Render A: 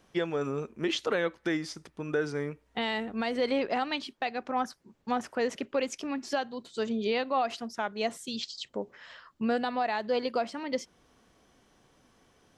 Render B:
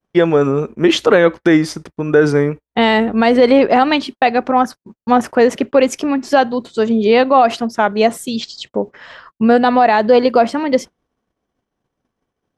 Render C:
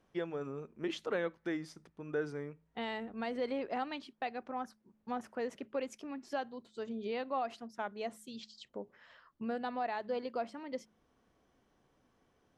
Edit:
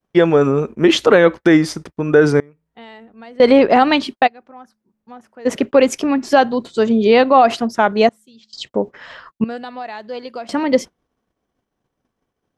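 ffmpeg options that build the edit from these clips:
-filter_complex "[2:a]asplit=3[a][b][c];[1:a]asplit=5[d][e][f][g][h];[d]atrim=end=2.402[i];[a]atrim=start=2.398:end=3.402[j];[e]atrim=start=3.398:end=4.28[k];[b]atrim=start=4.26:end=5.47[l];[f]atrim=start=5.45:end=8.092[m];[c]atrim=start=8.088:end=8.532[n];[g]atrim=start=8.528:end=9.442[o];[0:a]atrim=start=9.438:end=10.492[p];[h]atrim=start=10.488[q];[i][j]acrossfade=d=0.004:c1=hsin:c2=hsin[r];[r][k]acrossfade=d=0.004:c1=hsin:c2=hsin[s];[s][l]acrossfade=d=0.02:c1=tri:c2=tri[t];[t][m]acrossfade=d=0.02:c1=tri:c2=tri[u];[u][n]acrossfade=d=0.004:c1=hsin:c2=hsin[v];[v][o]acrossfade=d=0.004:c1=hsin:c2=hsin[w];[w][p]acrossfade=d=0.004:c1=hsin:c2=hsin[x];[x][q]acrossfade=d=0.004:c1=hsin:c2=hsin"

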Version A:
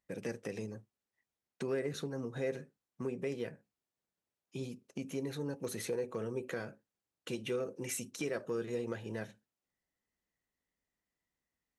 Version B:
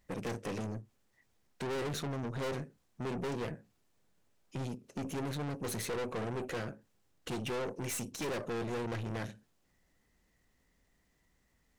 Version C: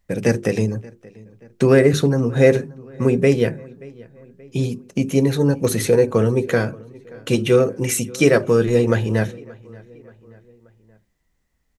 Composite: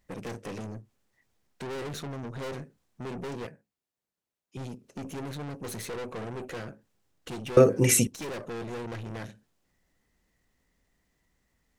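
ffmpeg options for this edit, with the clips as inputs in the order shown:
-filter_complex "[1:a]asplit=3[a][b][c];[a]atrim=end=3.472[d];[0:a]atrim=start=3.468:end=4.572[e];[b]atrim=start=4.568:end=7.572[f];[2:a]atrim=start=7.568:end=8.072[g];[c]atrim=start=8.068[h];[d][e]acrossfade=d=0.004:c1=hsin:c2=hsin[i];[i][f]acrossfade=d=0.004:c1=hsin:c2=hsin[j];[j][g]acrossfade=d=0.004:c1=hsin:c2=hsin[k];[k][h]acrossfade=d=0.004:c1=hsin:c2=hsin"

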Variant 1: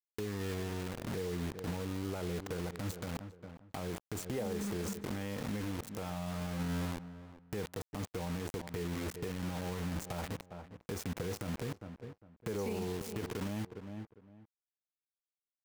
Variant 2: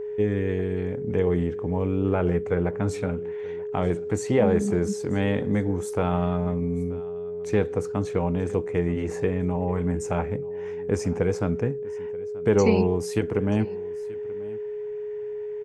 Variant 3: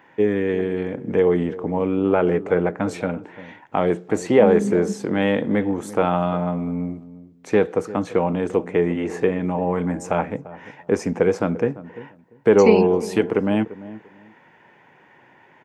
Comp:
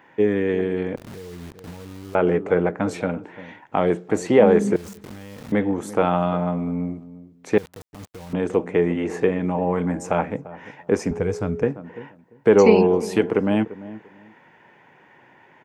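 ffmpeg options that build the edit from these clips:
-filter_complex "[0:a]asplit=3[a][b][c];[2:a]asplit=5[d][e][f][g][h];[d]atrim=end=0.962[i];[a]atrim=start=0.958:end=2.152[j];[e]atrim=start=2.148:end=4.762[k];[b]atrim=start=4.758:end=5.522[l];[f]atrim=start=5.518:end=7.582[m];[c]atrim=start=7.578:end=8.332[n];[g]atrim=start=8.328:end=11.112[o];[1:a]atrim=start=11.108:end=11.632[p];[h]atrim=start=11.628[q];[i][j]acrossfade=d=0.004:c1=hsin:c2=hsin[r];[r][k]acrossfade=d=0.004:c1=hsin:c2=hsin[s];[s][l]acrossfade=d=0.004:c1=hsin:c2=hsin[t];[t][m]acrossfade=d=0.004:c1=hsin:c2=hsin[u];[u][n]acrossfade=d=0.004:c1=hsin:c2=hsin[v];[v][o]acrossfade=d=0.004:c1=hsin:c2=hsin[w];[w][p]acrossfade=d=0.004:c1=hsin:c2=hsin[x];[x][q]acrossfade=d=0.004:c1=hsin:c2=hsin"

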